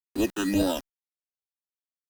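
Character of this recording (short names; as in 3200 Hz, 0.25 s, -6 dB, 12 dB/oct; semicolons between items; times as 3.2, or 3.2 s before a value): aliases and images of a low sample rate 2200 Hz, jitter 0%; phasing stages 8, 1.9 Hz, lowest notch 620–2200 Hz; a quantiser's noise floor 8-bit, dither none; Opus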